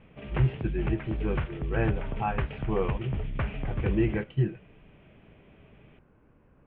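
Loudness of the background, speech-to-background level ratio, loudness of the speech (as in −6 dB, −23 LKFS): −34.0 LKFS, 2.5 dB, −31.5 LKFS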